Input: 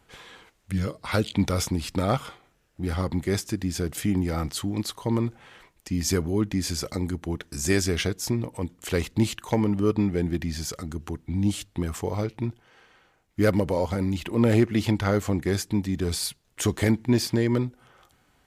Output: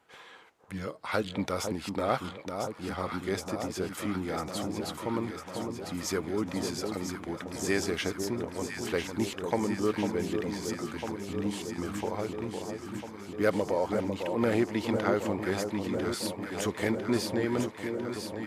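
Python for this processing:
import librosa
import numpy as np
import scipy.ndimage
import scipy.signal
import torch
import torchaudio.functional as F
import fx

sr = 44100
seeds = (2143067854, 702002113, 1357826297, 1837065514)

y = fx.highpass(x, sr, hz=760.0, slope=6)
y = fx.high_shelf(y, sr, hz=2100.0, db=-11.5)
y = fx.echo_alternate(y, sr, ms=500, hz=1100.0, feedback_pct=84, wet_db=-5.5)
y = F.gain(torch.from_numpy(y), 2.5).numpy()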